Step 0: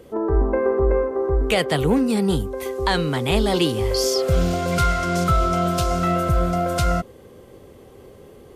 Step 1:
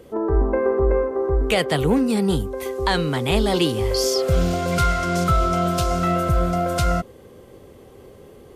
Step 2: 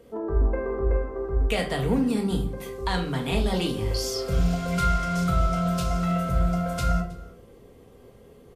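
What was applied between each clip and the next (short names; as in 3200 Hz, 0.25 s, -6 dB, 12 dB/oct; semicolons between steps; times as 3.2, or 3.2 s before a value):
nothing audible
echo 0.318 s -22.5 dB; shoebox room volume 470 m³, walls furnished, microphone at 1.7 m; gain -8.5 dB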